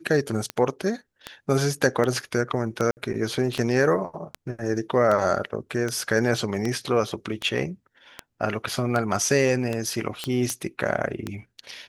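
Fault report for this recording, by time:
tick 78 rpm -13 dBFS
2.91–2.97 s: dropout 59 ms
10.24 s: pop -12 dBFS

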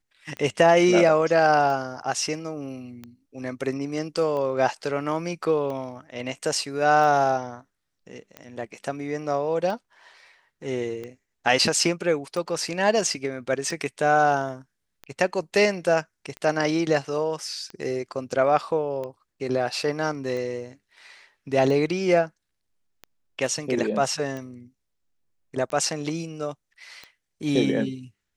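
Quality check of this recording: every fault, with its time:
tick 45 rpm -22 dBFS

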